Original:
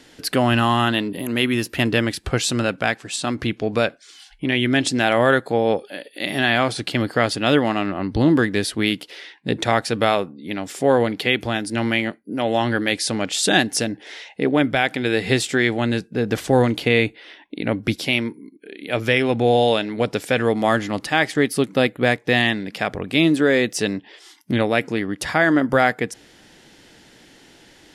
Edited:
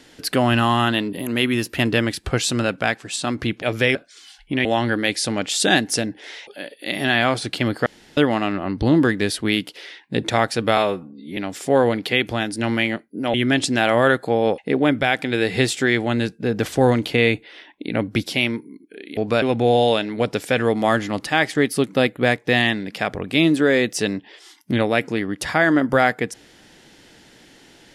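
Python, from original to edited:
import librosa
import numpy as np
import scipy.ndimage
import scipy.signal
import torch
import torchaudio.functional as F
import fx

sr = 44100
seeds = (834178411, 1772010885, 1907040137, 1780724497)

y = fx.edit(x, sr, fx.swap(start_s=3.62, length_s=0.25, other_s=18.89, other_length_s=0.33),
    fx.swap(start_s=4.57, length_s=1.24, other_s=12.48, other_length_s=1.82),
    fx.room_tone_fill(start_s=7.2, length_s=0.31),
    fx.stretch_span(start_s=10.11, length_s=0.4, factor=1.5), tone=tone)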